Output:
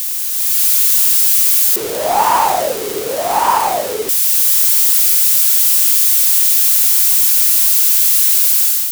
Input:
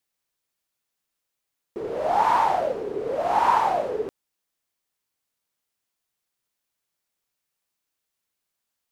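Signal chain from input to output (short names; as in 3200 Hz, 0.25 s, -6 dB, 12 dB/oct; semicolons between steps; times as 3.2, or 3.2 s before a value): switching spikes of -16.5 dBFS; requantised 10-bit, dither triangular; AGC gain up to 9 dB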